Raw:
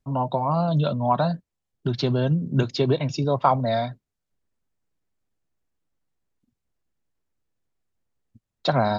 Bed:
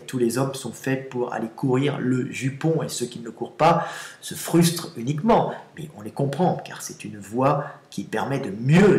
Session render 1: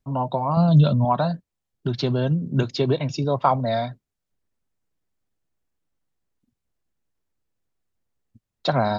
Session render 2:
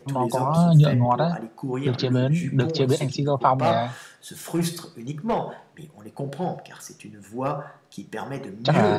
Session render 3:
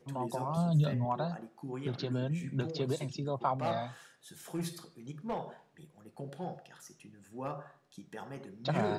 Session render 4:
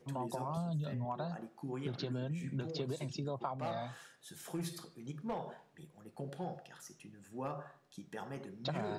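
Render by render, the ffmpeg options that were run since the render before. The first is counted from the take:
-filter_complex "[0:a]asettb=1/sr,asplit=3[s0][s1][s2];[s0]atrim=end=0.574[s3];[s1]atrim=start=0.57:end=1.05,asetpts=PTS-STARTPTS,afade=t=in:d=0.004:c=qsin,afade=t=out:st=0.476:d=0.004:c=qsin,bass=f=250:g=9,treble=f=4000:g=6[s4];[s2]atrim=start=1.046[s5];[s3][s4]acrossfade=d=0.004:c1=hsin:c2=qsin[s6];[s6][s5]acrossfade=d=0.004:c1=qsin:c2=hsin"
-filter_complex "[1:a]volume=0.447[s0];[0:a][s0]amix=inputs=2:normalize=0"
-af "volume=0.237"
-af "acompressor=threshold=0.0178:ratio=6"

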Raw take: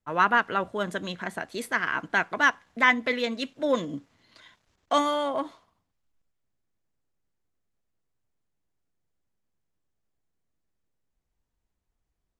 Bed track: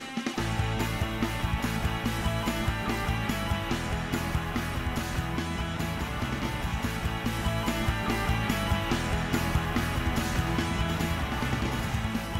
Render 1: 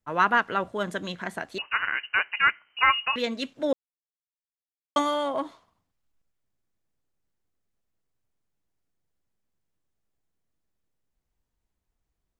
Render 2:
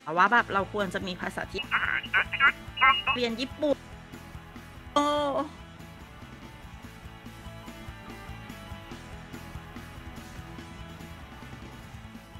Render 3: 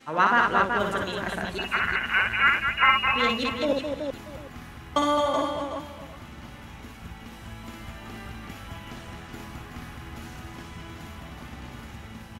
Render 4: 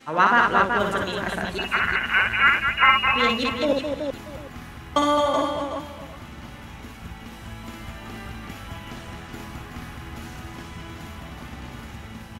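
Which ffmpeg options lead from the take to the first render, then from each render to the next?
-filter_complex "[0:a]asettb=1/sr,asplit=3[s0][s1][s2];[s0]atrim=end=1.584[s3];[s1]atrim=start=1.58:end=3.16,asetpts=PTS-STARTPTS,afade=t=in:d=0.004:c=qsin,afade=t=out:st=1.576:d=0.004:c=qsin,lowpass=f=2600:t=q:w=0.5098,lowpass=f=2600:t=q:w=0.6013,lowpass=f=2600:t=q:w=0.9,lowpass=f=2600:t=q:w=2.563,afreqshift=-3100[s4];[s2]atrim=start=3.156[s5];[s3][s4]acrossfade=d=0.004:c1=hsin:c2=qsin[s6];[s6][s5]acrossfade=d=0.004:c1=qsin:c2=hsin,asplit=3[s7][s8][s9];[s7]atrim=end=3.73,asetpts=PTS-STARTPTS,afade=t=out:st=3.726:d=0.004:c=hsin[s10];[s8]atrim=start=3.73:end=4.96,asetpts=PTS-STARTPTS,volume=0[s11];[s9]atrim=start=4.96,asetpts=PTS-STARTPTS,afade=t=in:d=0.004:c=hsin[s12];[s10][s11][s12]concat=n=3:v=0:a=1"
-filter_complex "[1:a]volume=0.188[s0];[0:a][s0]amix=inputs=2:normalize=0"
-af "aecho=1:1:58|213|275|376|636|746:0.631|0.501|0.1|0.501|0.126|0.1"
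-af "volume=1.41"

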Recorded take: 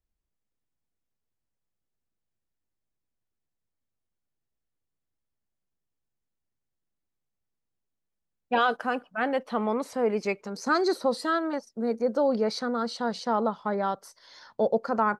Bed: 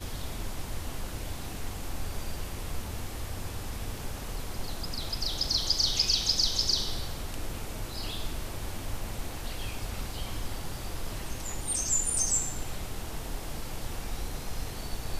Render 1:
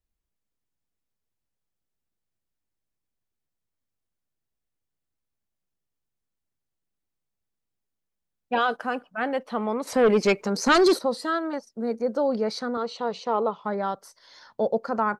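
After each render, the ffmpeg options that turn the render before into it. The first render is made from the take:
-filter_complex "[0:a]asettb=1/sr,asplit=3[s0][s1][s2];[s0]atrim=end=9.874[s3];[s1]atrim=start=9.87:end=10.99,asetpts=PTS-STARTPTS,afade=t=in:d=0.004:c=qsin,afade=t=out:st=1.116:d=0.004:c=qsin,aeval=exprs='0.2*sin(PI/2*2*val(0)/0.2)':c=same[s4];[s2]atrim=start=10.986[s5];[s3][s4]acrossfade=d=0.004:c1=hsin:c2=qsin[s6];[s6][s5]acrossfade=d=0.004:c1=qsin:c2=hsin,asettb=1/sr,asplit=3[s7][s8][s9];[s7]atrim=end=12.774[s10];[s8]atrim=start=12.77:end=13.64,asetpts=PTS-STARTPTS,afade=t=in:d=0.004:c=qsin,afade=t=out:st=0.866:d=0.004:c=qsin,highpass=110,equalizer=f=230:t=q:w=4:g=-6,equalizer=f=430:t=q:w=4:g=6,equalizer=f=1100:t=q:w=4:g=4,equalizer=f=1600:t=q:w=4:g=-8,equalizer=f=2600:t=q:w=4:g=9,equalizer=f=5000:t=q:w=4:g=-8,lowpass=f=6800:w=0.5412,lowpass=f=6800:w=1.3066[s11];[s9]atrim=start=13.636[s12];[s10][s11]acrossfade=d=0.004:c1=hsin:c2=qsin[s13];[s13][s12]acrossfade=d=0.004:c1=qsin:c2=hsin"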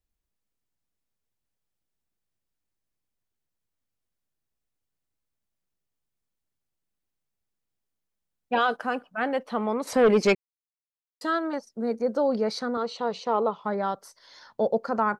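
-filter_complex "[0:a]asplit=3[s0][s1][s2];[s0]atrim=end=10.35,asetpts=PTS-STARTPTS,afade=t=out:st=10.346:d=0.004:c=hsin[s3];[s1]atrim=start=10.35:end=11.21,asetpts=PTS-STARTPTS,volume=0[s4];[s2]atrim=start=11.21,asetpts=PTS-STARTPTS,afade=t=in:d=0.004:c=hsin[s5];[s3][s4][s5]concat=n=3:v=0:a=1"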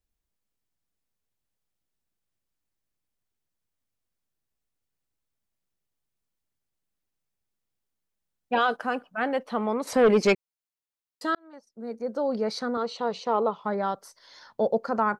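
-filter_complex "[0:a]asplit=2[s0][s1];[s0]atrim=end=11.35,asetpts=PTS-STARTPTS,afade=t=out:st=11.346:d=0.004:c=hsin[s2];[s1]atrim=start=11.35,asetpts=PTS-STARTPTS,afade=t=in:d=1.3[s3];[s2][s3]concat=n=2:v=0:a=1"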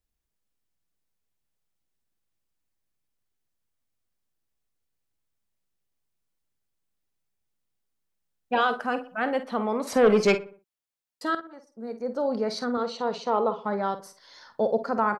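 -filter_complex "[0:a]asplit=2[s0][s1];[s1]adelay=49,volume=0.266[s2];[s0][s2]amix=inputs=2:normalize=0,asplit=2[s3][s4];[s4]adelay=61,lowpass=f=2000:p=1,volume=0.178,asplit=2[s5][s6];[s6]adelay=61,lowpass=f=2000:p=1,volume=0.47,asplit=2[s7][s8];[s8]adelay=61,lowpass=f=2000:p=1,volume=0.47,asplit=2[s9][s10];[s10]adelay=61,lowpass=f=2000:p=1,volume=0.47[s11];[s3][s5][s7][s9][s11]amix=inputs=5:normalize=0"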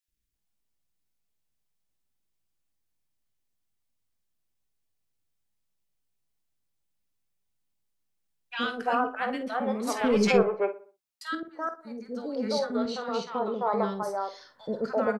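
-filter_complex "[0:a]asplit=2[s0][s1];[s1]adelay=20,volume=0.224[s2];[s0][s2]amix=inputs=2:normalize=0,acrossover=split=430|1400[s3][s4][s5];[s3]adelay=80[s6];[s4]adelay=340[s7];[s6][s7][s5]amix=inputs=3:normalize=0"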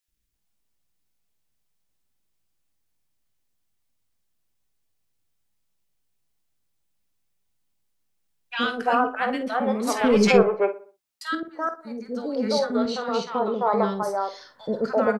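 -af "volume=1.78"

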